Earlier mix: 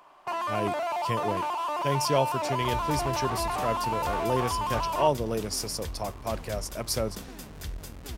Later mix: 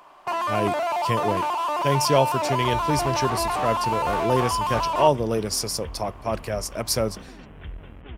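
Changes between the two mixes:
speech +5.5 dB
first sound +5.0 dB
second sound: add Butterworth low-pass 3,300 Hz 96 dB per octave

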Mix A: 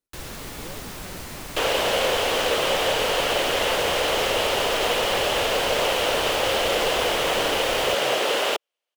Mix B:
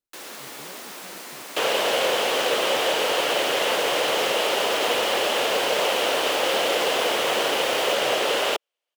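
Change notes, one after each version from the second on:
speech −5.0 dB
first sound: add Bessel high-pass filter 360 Hz, order 8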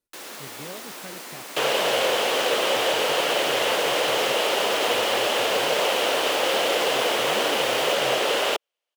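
speech +8.0 dB

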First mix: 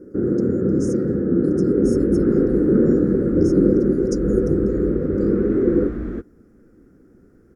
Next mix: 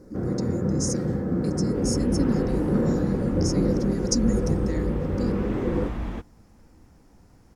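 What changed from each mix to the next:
speech: remove first difference
master: remove drawn EQ curve 140 Hz 0 dB, 390 Hz +13 dB, 920 Hz −16 dB, 1,400 Hz +5 dB, 2,800 Hz −14 dB, 5,400 Hz −10 dB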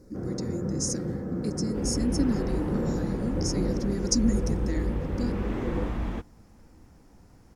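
first sound −6.0 dB

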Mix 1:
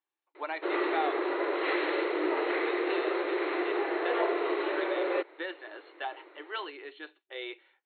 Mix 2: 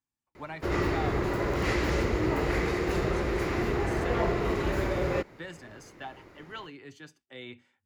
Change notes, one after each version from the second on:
speech −5.0 dB
master: remove linear-phase brick-wall band-pass 300–4,300 Hz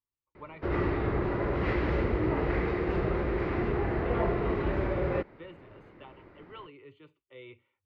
speech: add phaser with its sweep stopped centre 1,100 Hz, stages 8
master: add high-frequency loss of the air 380 metres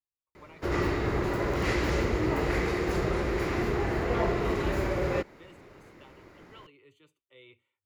speech −8.5 dB
master: remove high-frequency loss of the air 380 metres

